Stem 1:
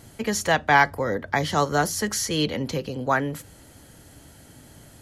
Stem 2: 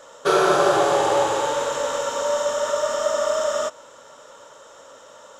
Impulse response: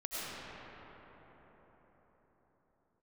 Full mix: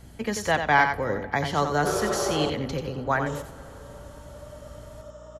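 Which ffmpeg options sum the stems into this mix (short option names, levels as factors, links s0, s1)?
-filter_complex "[0:a]asubboost=boost=3.5:cutoff=100,volume=0.75,asplit=4[s0][s1][s2][s3];[s1]volume=0.0794[s4];[s2]volume=0.447[s5];[1:a]equalizer=f=2000:t=o:w=2.3:g=-6.5,adelay=1600,volume=0.376,asplit=3[s6][s7][s8];[s6]atrim=end=2.5,asetpts=PTS-STARTPTS,afade=t=out:st=2.496:d=0.004:c=hsin[s9];[s7]atrim=start=2.5:end=3.26,asetpts=PTS-STARTPTS,volume=0[s10];[s8]atrim=start=3.26,asetpts=PTS-STARTPTS,afade=t=in:d=0.004:c=hsin[s11];[s9][s10][s11]concat=n=3:v=0:a=1,asplit=3[s12][s13][s14];[s13]volume=0.112[s15];[s14]volume=0.15[s16];[s3]apad=whole_len=308383[s17];[s12][s17]sidechaingate=range=0.0224:threshold=0.0126:ratio=16:detection=peak[s18];[2:a]atrim=start_sample=2205[s19];[s4][s15]amix=inputs=2:normalize=0[s20];[s20][s19]afir=irnorm=-1:irlink=0[s21];[s5][s16]amix=inputs=2:normalize=0,aecho=0:1:89:1[s22];[s0][s18][s21][s22]amix=inputs=4:normalize=0,highshelf=f=4800:g=-6.5,aeval=exprs='val(0)+0.00398*(sin(2*PI*60*n/s)+sin(2*PI*2*60*n/s)/2+sin(2*PI*3*60*n/s)/3+sin(2*PI*4*60*n/s)/4+sin(2*PI*5*60*n/s)/5)':c=same"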